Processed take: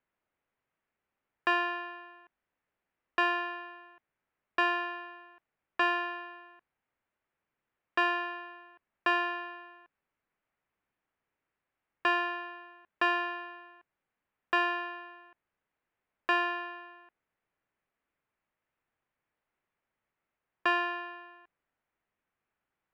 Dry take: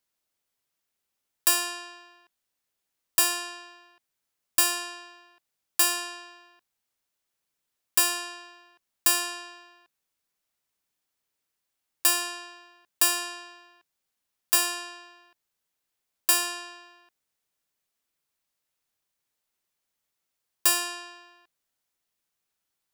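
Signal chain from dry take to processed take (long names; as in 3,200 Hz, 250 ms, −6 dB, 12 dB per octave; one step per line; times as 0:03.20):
low-pass filter 2,300 Hz 24 dB per octave
level +4 dB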